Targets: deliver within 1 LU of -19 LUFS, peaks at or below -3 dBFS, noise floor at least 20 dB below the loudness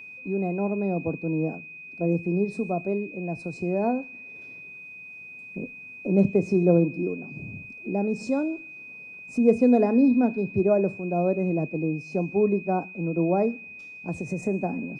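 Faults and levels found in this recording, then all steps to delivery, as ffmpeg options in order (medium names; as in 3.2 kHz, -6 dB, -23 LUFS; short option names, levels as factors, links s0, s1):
steady tone 2.5 kHz; tone level -40 dBFS; loudness -25.0 LUFS; peak level -7.5 dBFS; loudness target -19.0 LUFS
-> -af "bandreject=f=2500:w=30"
-af "volume=2,alimiter=limit=0.708:level=0:latency=1"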